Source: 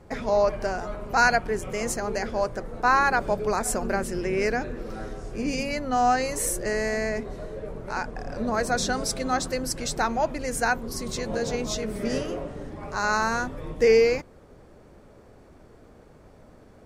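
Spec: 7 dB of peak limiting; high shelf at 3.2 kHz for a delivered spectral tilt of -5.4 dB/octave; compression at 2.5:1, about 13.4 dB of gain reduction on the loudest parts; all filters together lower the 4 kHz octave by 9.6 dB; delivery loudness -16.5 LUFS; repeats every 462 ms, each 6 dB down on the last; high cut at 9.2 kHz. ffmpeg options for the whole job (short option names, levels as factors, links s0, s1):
-af "lowpass=9200,highshelf=f=3200:g=-9,equalizer=f=4000:t=o:g=-4.5,acompressor=threshold=0.0158:ratio=2.5,alimiter=level_in=1.68:limit=0.0631:level=0:latency=1,volume=0.596,aecho=1:1:462|924|1386|1848|2310|2772:0.501|0.251|0.125|0.0626|0.0313|0.0157,volume=11.2"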